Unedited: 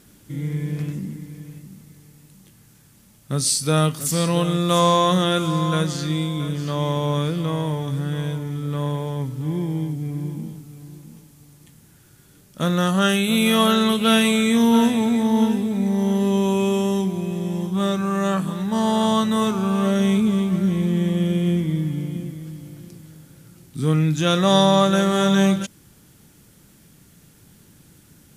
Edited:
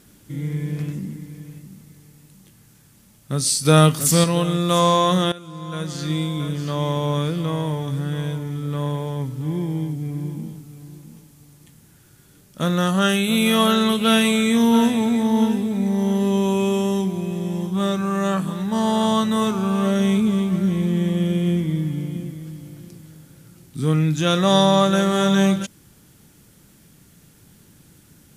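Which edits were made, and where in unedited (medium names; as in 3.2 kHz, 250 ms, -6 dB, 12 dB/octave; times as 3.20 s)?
3.65–4.24 s: gain +5.5 dB
5.32–6.10 s: fade in quadratic, from -18 dB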